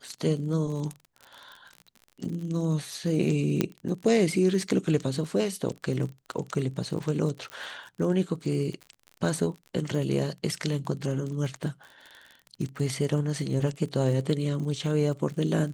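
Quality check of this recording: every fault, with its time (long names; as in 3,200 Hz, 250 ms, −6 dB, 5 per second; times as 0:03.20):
surface crackle 38 per second −35 dBFS
0:03.61: click −10 dBFS
0:07.50: click −23 dBFS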